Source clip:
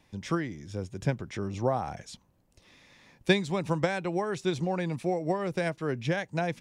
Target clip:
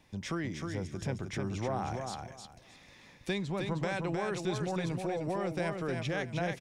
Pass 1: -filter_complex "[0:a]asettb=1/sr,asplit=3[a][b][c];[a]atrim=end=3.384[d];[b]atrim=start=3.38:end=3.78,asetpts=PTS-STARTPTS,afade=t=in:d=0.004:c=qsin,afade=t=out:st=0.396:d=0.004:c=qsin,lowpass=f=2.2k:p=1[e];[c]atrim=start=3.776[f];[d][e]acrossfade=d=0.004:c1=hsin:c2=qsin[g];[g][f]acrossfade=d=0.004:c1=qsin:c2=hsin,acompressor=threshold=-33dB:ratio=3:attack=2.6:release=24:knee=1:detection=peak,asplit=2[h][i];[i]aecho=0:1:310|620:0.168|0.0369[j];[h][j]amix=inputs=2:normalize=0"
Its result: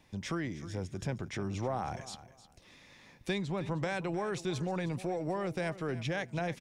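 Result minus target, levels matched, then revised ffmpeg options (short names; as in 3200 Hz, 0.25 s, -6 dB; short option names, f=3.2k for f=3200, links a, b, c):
echo-to-direct -10.5 dB
-filter_complex "[0:a]asettb=1/sr,asplit=3[a][b][c];[a]atrim=end=3.384[d];[b]atrim=start=3.38:end=3.78,asetpts=PTS-STARTPTS,afade=t=in:d=0.004:c=qsin,afade=t=out:st=0.396:d=0.004:c=qsin,lowpass=f=2.2k:p=1[e];[c]atrim=start=3.776[f];[d][e]acrossfade=d=0.004:c1=hsin:c2=qsin[g];[g][f]acrossfade=d=0.004:c1=qsin:c2=hsin,acompressor=threshold=-33dB:ratio=3:attack=2.6:release=24:knee=1:detection=peak,asplit=2[h][i];[i]aecho=0:1:310|620|930:0.562|0.124|0.0272[j];[h][j]amix=inputs=2:normalize=0"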